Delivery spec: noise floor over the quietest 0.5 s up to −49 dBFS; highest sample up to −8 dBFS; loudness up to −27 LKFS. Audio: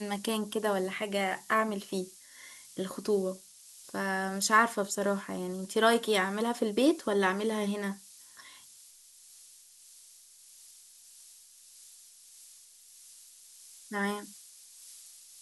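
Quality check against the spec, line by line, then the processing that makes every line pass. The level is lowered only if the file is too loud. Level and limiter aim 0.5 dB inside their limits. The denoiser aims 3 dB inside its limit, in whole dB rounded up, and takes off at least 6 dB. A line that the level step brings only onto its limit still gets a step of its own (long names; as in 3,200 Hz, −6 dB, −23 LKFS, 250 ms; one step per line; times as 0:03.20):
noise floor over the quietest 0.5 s −56 dBFS: in spec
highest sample −11.0 dBFS: in spec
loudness −30.0 LKFS: in spec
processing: no processing needed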